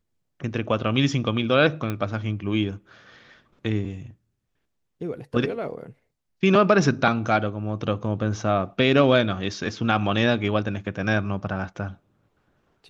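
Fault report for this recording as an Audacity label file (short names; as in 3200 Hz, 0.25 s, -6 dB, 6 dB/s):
1.900000	1.900000	pop -15 dBFS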